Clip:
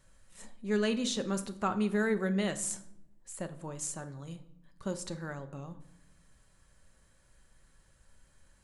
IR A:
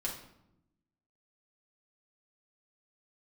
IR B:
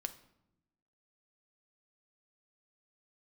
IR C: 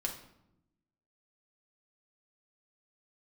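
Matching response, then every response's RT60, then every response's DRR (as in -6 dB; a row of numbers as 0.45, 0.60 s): B; 0.85, 0.85, 0.85 s; -4.0, 8.0, 0.0 dB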